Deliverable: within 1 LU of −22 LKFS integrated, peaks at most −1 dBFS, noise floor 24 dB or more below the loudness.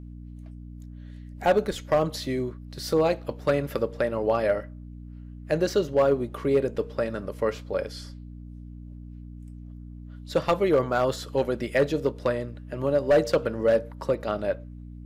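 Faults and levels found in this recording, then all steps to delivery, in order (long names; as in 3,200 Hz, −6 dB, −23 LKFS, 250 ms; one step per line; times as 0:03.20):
share of clipped samples 0.5%; peaks flattened at −14.0 dBFS; mains hum 60 Hz; hum harmonics up to 300 Hz; level of the hum −39 dBFS; integrated loudness −26.0 LKFS; sample peak −14.0 dBFS; target loudness −22.0 LKFS
→ clipped peaks rebuilt −14 dBFS
hum removal 60 Hz, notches 5
level +4 dB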